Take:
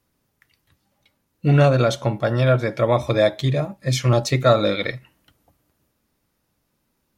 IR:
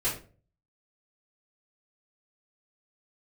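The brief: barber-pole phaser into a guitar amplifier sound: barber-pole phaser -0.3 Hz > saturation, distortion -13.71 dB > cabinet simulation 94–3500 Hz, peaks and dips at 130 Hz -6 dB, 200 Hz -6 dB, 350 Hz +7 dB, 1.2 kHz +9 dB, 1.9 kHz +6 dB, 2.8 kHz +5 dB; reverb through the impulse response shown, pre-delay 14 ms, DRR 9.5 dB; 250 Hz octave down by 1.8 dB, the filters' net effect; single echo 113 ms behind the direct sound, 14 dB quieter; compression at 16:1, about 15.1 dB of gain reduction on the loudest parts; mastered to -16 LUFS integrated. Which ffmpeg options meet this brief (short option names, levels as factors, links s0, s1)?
-filter_complex "[0:a]equalizer=f=250:t=o:g=-4,acompressor=threshold=0.0447:ratio=16,aecho=1:1:113:0.2,asplit=2[s0][s1];[1:a]atrim=start_sample=2205,adelay=14[s2];[s1][s2]afir=irnorm=-1:irlink=0,volume=0.133[s3];[s0][s3]amix=inputs=2:normalize=0,asplit=2[s4][s5];[s5]afreqshift=-0.3[s6];[s4][s6]amix=inputs=2:normalize=1,asoftclip=threshold=0.0376,highpass=94,equalizer=f=130:t=q:w=4:g=-6,equalizer=f=200:t=q:w=4:g=-6,equalizer=f=350:t=q:w=4:g=7,equalizer=f=1200:t=q:w=4:g=9,equalizer=f=1900:t=q:w=4:g=6,equalizer=f=2800:t=q:w=4:g=5,lowpass=f=3500:w=0.5412,lowpass=f=3500:w=1.3066,volume=10.6"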